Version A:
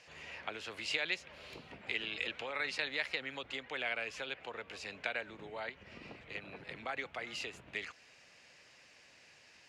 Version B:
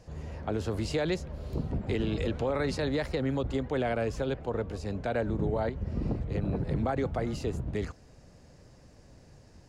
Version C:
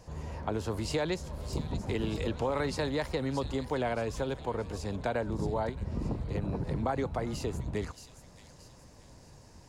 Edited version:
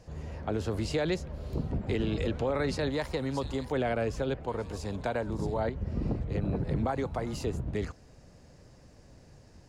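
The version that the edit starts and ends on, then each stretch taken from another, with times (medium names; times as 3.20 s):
B
2.90–3.72 s: from C
4.48–5.57 s: from C
6.87–7.45 s: from C
not used: A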